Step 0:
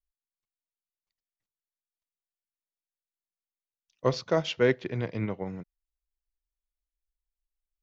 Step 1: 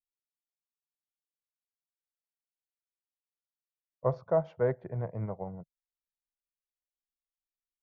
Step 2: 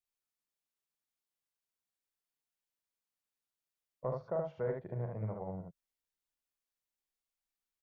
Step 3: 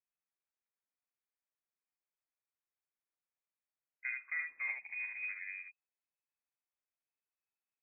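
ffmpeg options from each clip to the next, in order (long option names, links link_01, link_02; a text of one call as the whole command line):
ffmpeg -i in.wav -af "afftdn=noise_reduction=21:noise_floor=-53,firequalizer=gain_entry='entry(150,0);entry(270,-12);entry(630,4);entry(2800,-29)':delay=0.05:min_phase=1,volume=-1.5dB" out.wav
ffmpeg -i in.wav -filter_complex "[0:a]acompressor=threshold=-42dB:ratio=2,asplit=2[link_01][link_02];[link_02]aecho=0:1:39|74:0.398|0.708[link_03];[link_01][link_03]amix=inputs=2:normalize=0" out.wav
ffmpeg -i in.wav -af "lowpass=frequency=2200:width_type=q:width=0.5098,lowpass=frequency=2200:width_type=q:width=0.6013,lowpass=frequency=2200:width_type=q:width=0.9,lowpass=frequency=2200:width_type=q:width=2.563,afreqshift=-2600,volume=-3.5dB" out.wav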